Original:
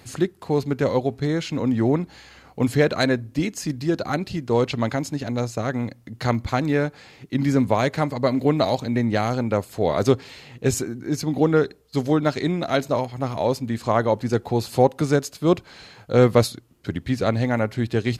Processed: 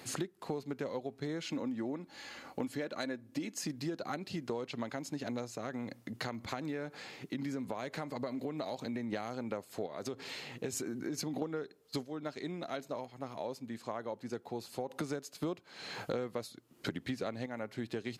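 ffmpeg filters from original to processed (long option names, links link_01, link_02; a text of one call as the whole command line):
ffmpeg -i in.wav -filter_complex "[0:a]asettb=1/sr,asplit=3[link_01][link_02][link_03];[link_01]atrim=end=1.424[link_04];[link_02]atrim=start=1.42:end=3.59,asetpts=PTS-STARTPTS,afade=type=in:duration=0.004:curve=qsin,afade=type=out:start_time=2.166:duration=0.004:curve=qsin,aecho=1:1:3.5:0.34,atrim=end_sample=95697[link_05];[link_03]atrim=start=3.586[link_06];[link_04][link_05]acrossfade=duration=0.004:curve1=hsin:curve2=qsin[link_07];[link_07][link_06]acrossfade=duration=0.004:curve1=qsin:curve2=hsin,asettb=1/sr,asplit=3[link_08][link_09][link_10];[link_08]atrim=end=5.514[link_11];[link_09]atrim=start=5.51:end=9.13,asetpts=PTS-STARTPTS,afade=type=in:duration=0.004:curve=qsin,afade=type=out:start_time=3.616:duration=0.004:curve=qsin,acompressor=threshold=-32dB:ratio=2:attack=3.2:release=140:knee=1:detection=peak[link_12];[link_10]atrim=start=9.126[link_13];[link_11][link_12]acrossfade=duration=0.004:curve1=hsin:curve2=qsin[link_14];[link_14][link_13]acrossfade=duration=0.004:curve1=qsin:curve2=hsin,asettb=1/sr,asplit=3[link_15][link_16][link_17];[link_15]atrim=end=9.864[link_18];[link_16]atrim=start=9.86:end=11.42,asetpts=PTS-STARTPTS,afade=type=in:duration=0.004:curve=qsin,afade=type=out:start_time=1.556:duration=0.004:curve=qsin,acompressor=threshold=-26dB:ratio=4:attack=3.2:release=140:knee=1:detection=peak[link_19];[link_17]atrim=start=11.416[link_20];[link_18][link_19]acrossfade=duration=0.004:curve1=hsin:curve2=qsin[link_21];[link_21][link_20]acrossfade=duration=0.004:curve1=qsin:curve2=hsin,asplit=5[link_22][link_23][link_24][link_25][link_26];[link_22]atrim=end=12.19,asetpts=PTS-STARTPTS,afade=type=out:start_time=12.03:duration=0.16:curve=exp:silence=0.223872[link_27];[link_23]atrim=start=12.19:end=14.75,asetpts=PTS-STARTPTS,volume=-13dB[link_28];[link_24]atrim=start=14.75:end=15.432,asetpts=PTS-STARTPTS,afade=type=in:duration=0.16:curve=exp:silence=0.223872[link_29];[link_25]atrim=start=15.428:end=17.462,asetpts=PTS-STARTPTS,volume=7.5dB[link_30];[link_26]atrim=start=17.458[link_31];[link_27][link_28][link_29]concat=n=3:v=0:a=1[link_32];[link_32][link_30]acrossfade=duration=0.004:curve1=hsin:curve2=hsin[link_33];[link_33][link_31]acrossfade=duration=0.004:curve1=hsin:curve2=hsin,highpass=190,acompressor=threshold=-33dB:ratio=16,volume=-1dB" out.wav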